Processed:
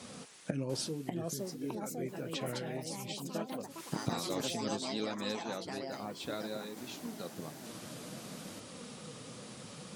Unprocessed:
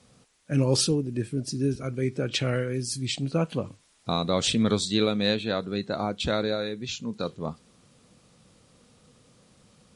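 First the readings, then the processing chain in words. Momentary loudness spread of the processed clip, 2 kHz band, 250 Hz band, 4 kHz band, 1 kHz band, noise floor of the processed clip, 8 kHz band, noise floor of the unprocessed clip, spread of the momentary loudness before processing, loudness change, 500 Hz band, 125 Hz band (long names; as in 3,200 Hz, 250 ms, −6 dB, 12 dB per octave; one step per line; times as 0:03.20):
11 LU, −10.0 dB, −11.0 dB, −11.5 dB, −7.5 dB, −50 dBFS, −8.5 dB, −63 dBFS, 10 LU, −12.5 dB, −11.0 dB, −14.0 dB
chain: gate with flip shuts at −28 dBFS, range −25 dB
delay with pitch and tempo change per echo 695 ms, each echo +4 semitones, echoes 3
flanger 0.58 Hz, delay 2.9 ms, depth 5.9 ms, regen −50%
high-pass filter 140 Hz 12 dB per octave
level +15.5 dB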